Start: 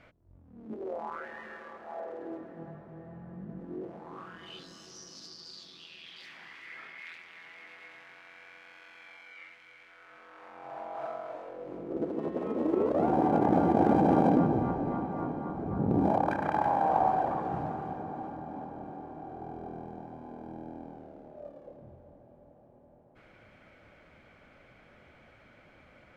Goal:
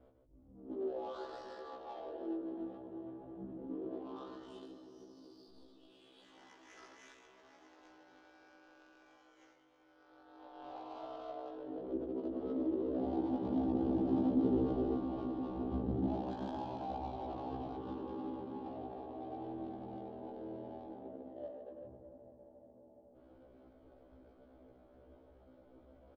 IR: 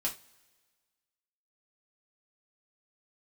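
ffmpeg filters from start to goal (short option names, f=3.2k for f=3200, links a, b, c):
-filter_complex "[0:a]aecho=1:1:42|88|146|148|347|422:0.299|0.266|0.501|0.141|0.15|0.15,asettb=1/sr,asplit=3[a][b][c];[a]atrim=end=5.494[d];[b]atrim=start=5.49:end=5.9,asetpts=PTS-STARTPTS,afade=t=in:d=0.004:c=qsin,afade=t=out:st=0.406:d=0.004:c=qsin,aeval=exprs='clip(val(0),-1,0.00316)':c=same[e];[c]atrim=start=5.896[f];[d][e]acrossfade=d=0.004:c1=hsin:c2=qsin[g];[g][f]acrossfade=d=0.004:c1=qsin:c2=hsin,asettb=1/sr,asplit=3[h][i][j];[h]atrim=end=17.774[k];[i]atrim=start=17.77:end=18.66,asetpts=PTS-STARTPTS,afade=t=in:d=0.004:c=qsin,afade=t=out:st=0.886:d=0.004:c=qsin,asuperstop=centerf=690:order=4:qfactor=2.9[l];[j]atrim=start=18.656[m];[k][l]acrossfade=d=0.004:c1=hsin:c2=qsin[n];[n][m]acrossfade=d=0.004:c1=qsin:c2=hsin,acrossover=split=210[o][p];[p]acompressor=threshold=-38dB:ratio=8[q];[o][q]amix=inputs=2:normalize=0,asettb=1/sr,asplit=3[r][s][t];[r]atrim=end=14.404[u];[s]atrim=start=14.4:end=14.97,asetpts=PTS-STARTPTS,afade=t=in:d=0.004:c=qsin,afade=t=out:st=0.566:d=0.004:c=qsin,equalizer=f=410:w=2.2:g=9[v];[t]atrim=start=14.966[w];[u][v]acrossfade=d=0.004:c1=hsin:c2=qsin[x];[x][w]acrossfade=d=0.004:c1=qsin:c2=hsin,adynamicsmooth=sensitivity=6:basefreq=710,firequalizer=gain_entry='entry(100,0);entry(150,-18);entry(240,4);entry(2200,-10);entry(3200,7)':delay=0.05:min_phase=1,afftfilt=real='re*1.73*eq(mod(b,3),0)':imag='im*1.73*eq(mod(b,3),0)':win_size=2048:overlap=0.75"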